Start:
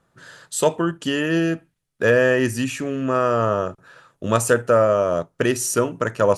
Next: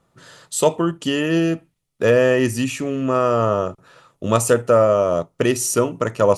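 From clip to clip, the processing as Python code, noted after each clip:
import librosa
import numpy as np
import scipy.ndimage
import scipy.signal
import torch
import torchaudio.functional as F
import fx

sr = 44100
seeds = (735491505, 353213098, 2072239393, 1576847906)

y = fx.peak_eq(x, sr, hz=1600.0, db=-10.5, octaves=0.24)
y = y * 10.0 ** (2.0 / 20.0)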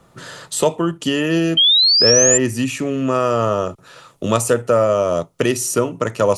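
y = fx.spec_paint(x, sr, seeds[0], shape='rise', start_s=1.57, length_s=0.81, low_hz=3100.0, high_hz=7400.0, level_db=-11.0)
y = fx.band_squash(y, sr, depth_pct=40)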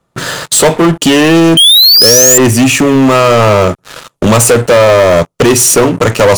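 y = fx.leveller(x, sr, passes=5)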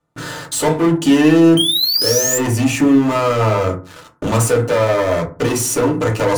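y = fx.rev_fdn(x, sr, rt60_s=0.37, lf_ratio=1.4, hf_ratio=0.4, size_ms=20.0, drr_db=-1.0)
y = y * 10.0 ** (-13.5 / 20.0)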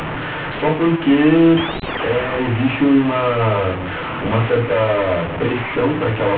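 y = fx.delta_mod(x, sr, bps=16000, step_db=-16.5)
y = y * 10.0 ** (-1.5 / 20.0)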